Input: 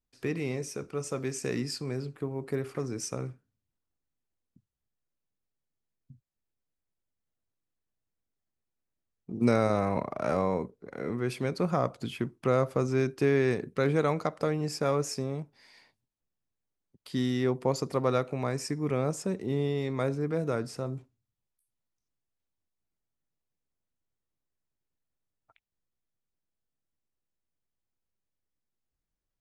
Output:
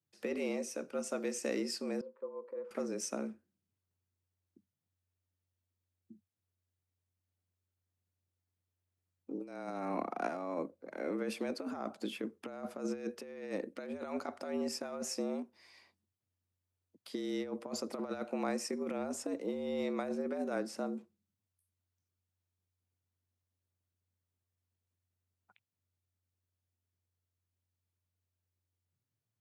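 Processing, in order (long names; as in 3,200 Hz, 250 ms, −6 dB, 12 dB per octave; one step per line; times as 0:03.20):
compressor whose output falls as the input rises −30 dBFS, ratio −0.5
frequency shifter +90 Hz
0:02.01–0:02.71: pair of resonant band-passes 720 Hz, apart 0.91 octaves
level −6 dB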